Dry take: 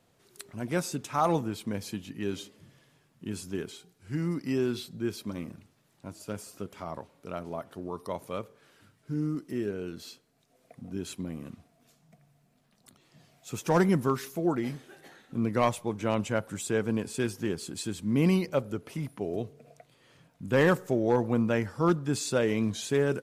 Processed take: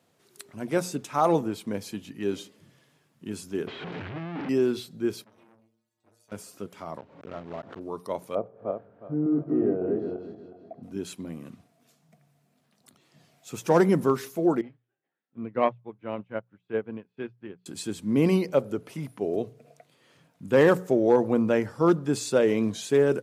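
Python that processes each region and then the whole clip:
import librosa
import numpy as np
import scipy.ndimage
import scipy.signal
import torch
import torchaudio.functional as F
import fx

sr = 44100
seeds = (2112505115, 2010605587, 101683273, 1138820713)

y = fx.chain(x, sr, fx.clip_1bit(),
    fx.lowpass(hz=2900.0, slope=24), at=(3.67, 4.49))
y = fx.chain(y, sr, fx.stiff_resonator(f0_hz=110.0, decay_s=0.61, stiffness=0.008),
    fx.transformer_sat(knee_hz=1900.0), at=(5.24, 6.32))
y = fx.chain(y, sr, fx.block_float(bits=3),
    fx.spacing_loss(db_at_10k=37),
    fx.pre_swell(db_per_s=82.0), at=(6.98, 7.81))
y = fx.chain(y, sr, fx.reverse_delay_fb(ms=182, feedback_pct=54, wet_db=-1),
    fx.lowpass(hz=1000.0, slope=12),
    fx.peak_eq(hz=690.0, db=14.5, octaves=0.35), at=(8.35, 10.83))
y = fx.chain(y, sr, fx.lowpass(hz=3100.0, slope=24),
    fx.upward_expand(threshold_db=-44.0, expansion=2.5), at=(14.61, 17.66))
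y = scipy.signal.sosfilt(scipy.signal.butter(2, 110.0, 'highpass', fs=sr, output='sos'), y)
y = fx.hum_notches(y, sr, base_hz=60, count=3)
y = fx.dynamic_eq(y, sr, hz=450.0, q=0.74, threshold_db=-37.0, ratio=4.0, max_db=6)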